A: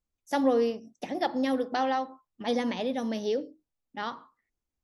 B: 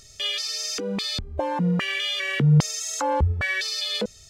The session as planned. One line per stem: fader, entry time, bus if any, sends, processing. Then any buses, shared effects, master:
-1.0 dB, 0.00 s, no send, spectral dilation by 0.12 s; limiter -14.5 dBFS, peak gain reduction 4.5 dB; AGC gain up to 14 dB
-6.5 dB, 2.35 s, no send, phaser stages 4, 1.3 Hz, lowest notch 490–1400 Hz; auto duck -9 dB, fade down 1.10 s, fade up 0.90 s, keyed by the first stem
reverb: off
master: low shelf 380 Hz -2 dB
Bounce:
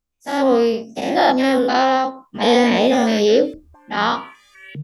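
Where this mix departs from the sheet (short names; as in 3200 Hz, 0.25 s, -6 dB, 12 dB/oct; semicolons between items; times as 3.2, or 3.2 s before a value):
stem A: missing limiter -14.5 dBFS, peak gain reduction 4.5 dB; master: missing low shelf 380 Hz -2 dB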